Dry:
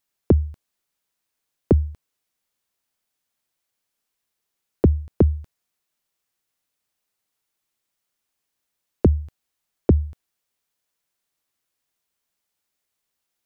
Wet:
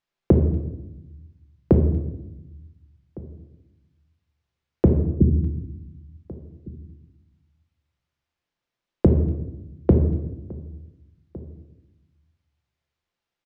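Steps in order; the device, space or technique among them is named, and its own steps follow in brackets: 4.9–5.41 inverse Chebyshev low-pass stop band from 1100 Hz, stop band 60 dB; shout across a valley (air absorption 160 m; outdoor echo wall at 250 m, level -21 dB); shoebox room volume 380 m³, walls mixed, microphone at 0.8 m

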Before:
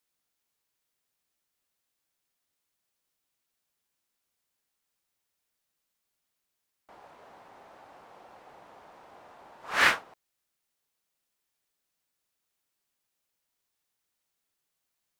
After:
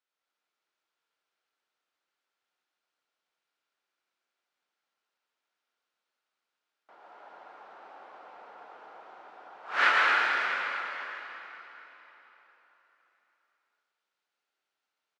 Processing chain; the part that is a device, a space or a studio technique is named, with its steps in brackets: station announcement (BPF 360–3900 Hz; bell 1400 Hz +7 dB 0.23 oct; loudspeakers at several distances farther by 48 m -10 dB, 77 m -10 dB; reverb RT60 3.9 s, pre-delay 83 ms, DRR -3.5 dB); gain -3.5 dB

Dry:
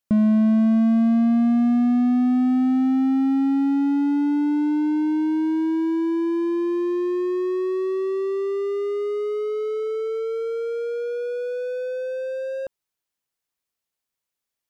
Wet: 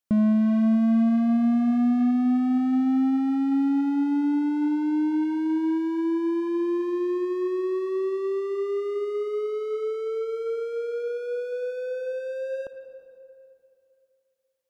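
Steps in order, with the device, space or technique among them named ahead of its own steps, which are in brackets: saturated reverb return (on a send at -8.5 dB: reverb RT60 2.8 s, pre-delay 49 ms + soft clip -24.5 dBFS, distortion -6 dB); on the sum: gain -3 dB

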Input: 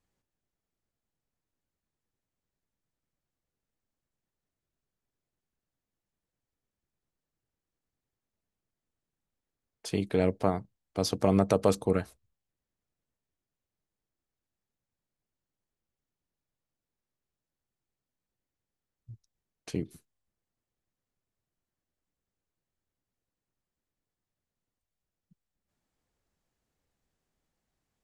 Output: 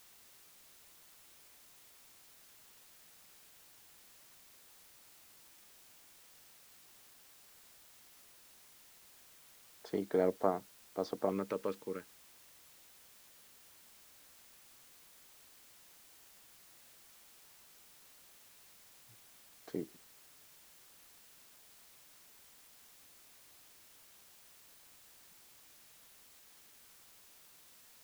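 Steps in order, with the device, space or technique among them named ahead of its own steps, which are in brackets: shortwave radio (BPF 300–2500 Hz; tremolo 0.2 Hz, depth 71%; LFO notch square 0.31 Hz 710–2600 Hz; white noise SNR 14 dB); gain -2 dB

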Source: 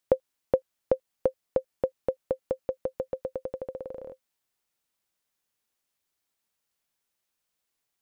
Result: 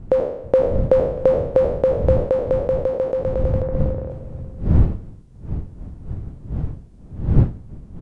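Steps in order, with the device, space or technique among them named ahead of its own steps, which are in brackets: spectral trails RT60 0.76 s; 3.62–4.1 steep low-pass 2100 Hz; echo 0.639 s -20 dB; smartphone video outdoors (wind noise 110 Hz -30 dBFS; AGC gain up to 5 dB; gain +2.5 dB; AAC 96 kbps 22050 Hz)

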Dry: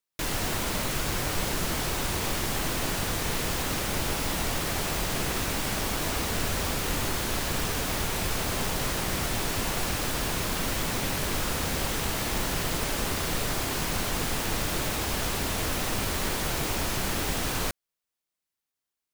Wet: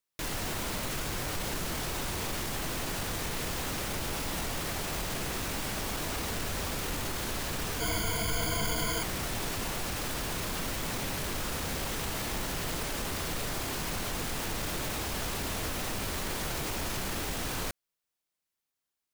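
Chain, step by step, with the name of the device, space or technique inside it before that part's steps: soft clipper into limiter (soft clip -19 dBFS, distortion -23 dB; limiter -26 dBFS, peak gain reduction 6.5 dB); 7.8–9.03 ripple EQ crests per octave 1.8, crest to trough 17 dB

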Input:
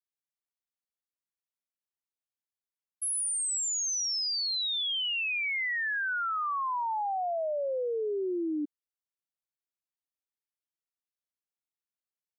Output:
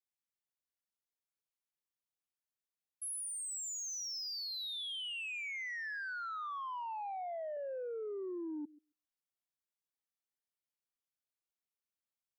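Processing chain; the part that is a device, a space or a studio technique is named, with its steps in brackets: 6.99–7.57 HPF 240 Hz 12 dB/oct; thinning echo 0.135 s, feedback 25%, high-pass 1100 Hz, level -14 dB; soft clipper into limiter (soft clip -27 dBFS, distortion -23 dB; limiter -34 dBFS, peak gain reduction 5 dB); gain -4 dB

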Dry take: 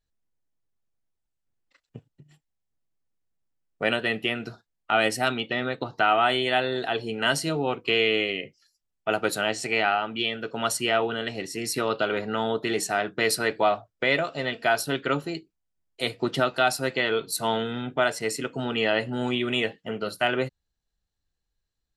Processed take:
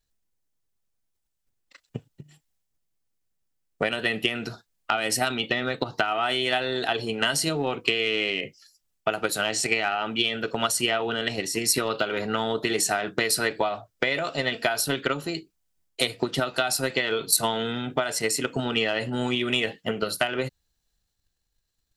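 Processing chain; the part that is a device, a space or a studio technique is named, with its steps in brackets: drum-bus smash (transient shaper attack +9 dB, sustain +5 dB; compressor 10:1, threshold -21 dBFS, peak gain reduction 11.5 dB; soft clip -7.5 dBFS, distortion -28 dB); high shelf 3300 Hz +7.5 dB

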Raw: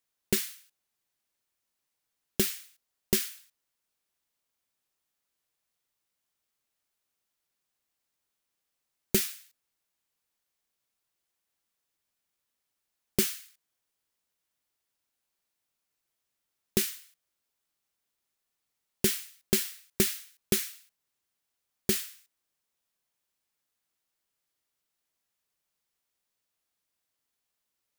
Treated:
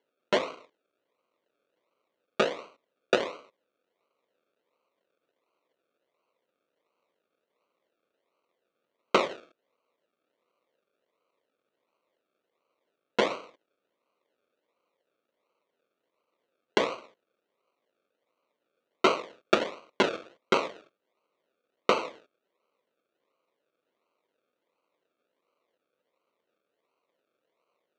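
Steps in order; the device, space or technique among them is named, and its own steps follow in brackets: circuit-bent sampling toy (decimation with a swept rate 35×, swing 60% 1.4 Hz; speaker cabinet 510–5200 Hz, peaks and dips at 510 Hz +4 dB, 790 Hz -10 dB, 1200 Hz +5 dB, 1700 Hz -7 dB, 5000 Hz -9 dB); gain +8.5 dB

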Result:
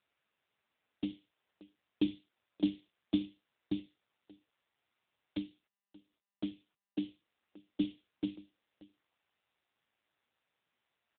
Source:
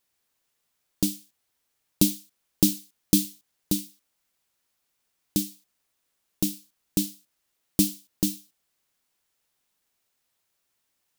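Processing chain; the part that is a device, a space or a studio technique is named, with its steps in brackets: 5.37–7.03 gate -54 dBFS, range -51 dB; satellite phone (BPF 380–3300 Hz; echo 0.583 s -22 dB; AMR-NB 6.7 kbps 8000 Hz)

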